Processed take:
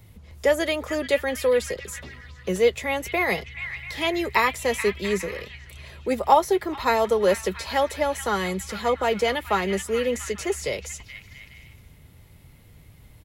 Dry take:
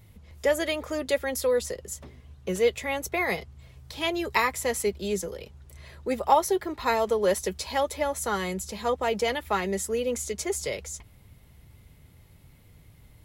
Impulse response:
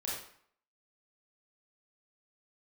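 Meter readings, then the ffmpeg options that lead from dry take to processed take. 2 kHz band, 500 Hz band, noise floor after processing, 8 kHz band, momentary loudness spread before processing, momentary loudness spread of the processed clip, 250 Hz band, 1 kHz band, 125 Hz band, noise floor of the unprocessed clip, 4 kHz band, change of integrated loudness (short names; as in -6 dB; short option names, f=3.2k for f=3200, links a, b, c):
+4.5 dB, +3.5 dB, -51 dBFS, -1.5 dB, 12 LU, 15 LU, +3.5 dB, +3.5 dB, +3.5 dB, -55 dBFS, +3.0 dB, +3.5 dB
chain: -filter_complex "[0:a]acrossover=split=190|1500|3300[a][b][c][d];[c]aecho=1:1:430|688|842.8|935.7|991.4:0.631|0.398|0.251|0.158|0.1[e];[d]alimiter=level_in=7dB:limit=-24dB:level=0:latency=1:release=18,volume=-7dB[f];[a][b][e][f]amix=inputs=4:normalize=0,volume=3.5dB"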